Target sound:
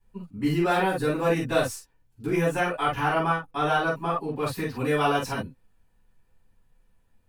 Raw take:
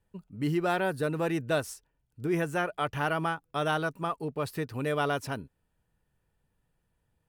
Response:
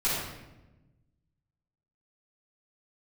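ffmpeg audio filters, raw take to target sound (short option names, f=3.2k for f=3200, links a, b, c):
-filter_complex "[0:a]asettb=1/sr,asplit=3[a][b][c];[a]atrim=end=3.004[d];[b]atrim=start=3:end=4.36,asetpts=PTS-STARTPTS,afade=t=in:d=0.004:c=qsin,afade=t=out:st=1.356:d=0.004:c=qsin,highshelf=f=4.5k:g=-7[e];[c]atrim=start=4.356[f];[d][e]acrossfade=d=0.004:c1=hsin:c2=qsin[g];[g][f]acrossfade=d=0.004:c1=qsin:c2=hsin[h];[1:a]atrim=start_sample=2205,atrim=end_sample=3087[i];[h][i]afir=irnorm=-1:irlink=0,volume=-2dB"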